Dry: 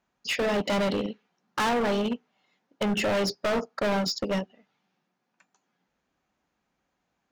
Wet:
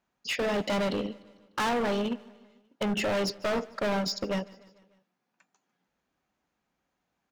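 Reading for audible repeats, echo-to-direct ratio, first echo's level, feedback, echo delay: 3, −21.0 dB, −22.5 dB, 58%, 149 ms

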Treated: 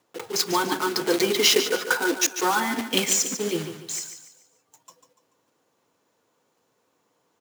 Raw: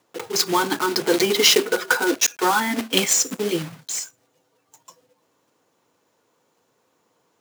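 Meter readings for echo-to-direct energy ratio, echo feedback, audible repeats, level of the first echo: −9.5 dB, 37%, 3, −10.0 dB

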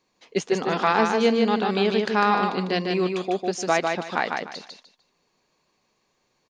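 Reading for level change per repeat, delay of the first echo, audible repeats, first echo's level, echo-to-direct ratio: −12.0 dB, 150 ms, 3, −4.0 dB, −3.5 dB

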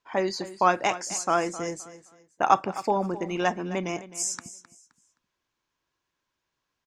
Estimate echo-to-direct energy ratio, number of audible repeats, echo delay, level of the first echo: −15.0 dB, 2, 261 ms, −15.5 dB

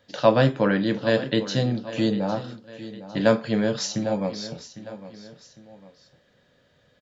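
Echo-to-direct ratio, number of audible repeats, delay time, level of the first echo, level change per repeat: −14.5 dB, 2, 804 ms, −15.0 dB, −7.5 dB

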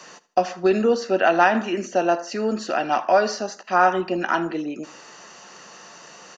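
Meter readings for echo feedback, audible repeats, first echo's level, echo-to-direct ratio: 31%, 2, −19.0 dB, −18.5 dB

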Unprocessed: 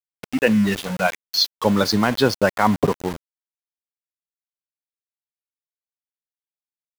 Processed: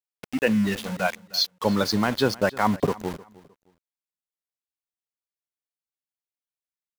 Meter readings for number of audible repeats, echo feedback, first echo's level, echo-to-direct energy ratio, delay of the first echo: 2, 26%, −21.0 dB, −20.5 dB, 308 ms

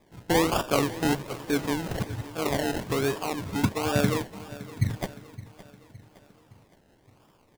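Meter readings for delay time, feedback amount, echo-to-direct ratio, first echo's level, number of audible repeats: 565 ms, 50%, −16.0 dB, −17.0 dB, 3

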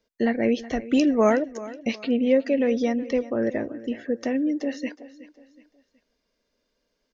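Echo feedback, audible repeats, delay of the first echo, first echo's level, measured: 37%, 3, 370 ms, −17.0 dB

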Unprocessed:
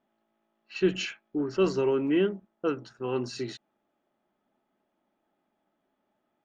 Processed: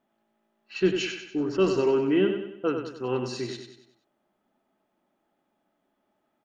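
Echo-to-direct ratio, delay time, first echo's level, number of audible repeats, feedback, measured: −6.0 dB, 95 ms, −7.0 dB, 5, 45%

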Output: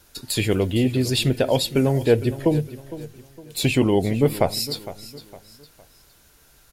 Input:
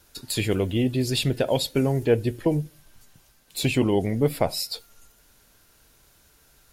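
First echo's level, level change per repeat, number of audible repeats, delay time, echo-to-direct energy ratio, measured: −15.5 dB, −8.5 dB, 3, 459 ms, −15.0 dB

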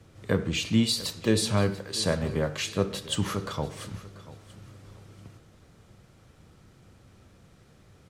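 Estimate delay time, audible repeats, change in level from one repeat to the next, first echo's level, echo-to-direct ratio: 688 ms, 2, −11.0 dB, −18.0 dB, −17.5 dB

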